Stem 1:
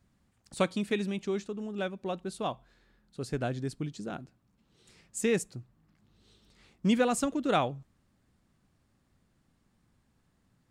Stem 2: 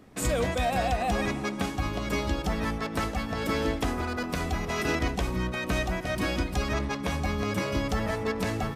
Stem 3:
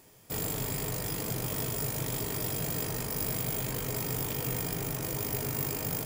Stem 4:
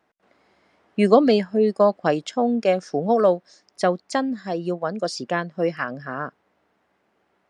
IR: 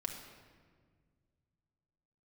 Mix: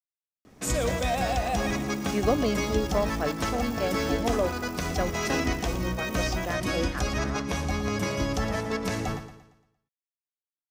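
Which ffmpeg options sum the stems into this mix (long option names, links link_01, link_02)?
-filter_complex "[1:a]adelay=450,volume=-0.5dB,asplit=2[link_01][link_02];[link_02]volume=-11.5dB[link_03];[2:a]equalizer=frequency=13000:width_type=o:width=0.33:gain=-4.5,adelay=500,volume=-15.5dB[link_04];[3:a]adelay=1150,volume=-10dB[link_05];[link_03]aecho=0:1:115|230|345|460|575|690:1|0.42|0.176|0.0741|0.0311|0.0131[link_06];[link_01][link_04][link_05][link_06]amix=inputs=4:normalize=0,equalizer=frequency=6000:width_type=o:width=0.54:gain=6.5,asoftclip=type=hard:threshold=-14.5dB"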